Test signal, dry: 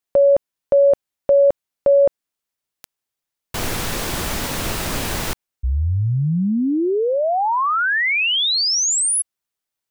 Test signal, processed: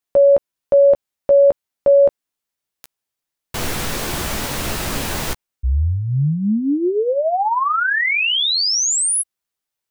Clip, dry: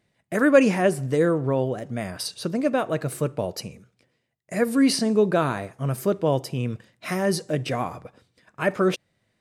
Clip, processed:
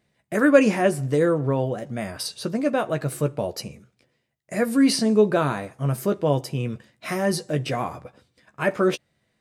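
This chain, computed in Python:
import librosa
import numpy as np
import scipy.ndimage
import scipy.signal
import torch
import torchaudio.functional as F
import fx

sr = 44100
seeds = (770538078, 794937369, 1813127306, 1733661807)

y = fx.doubler(x, sr, ms=14.0, db=-8.5)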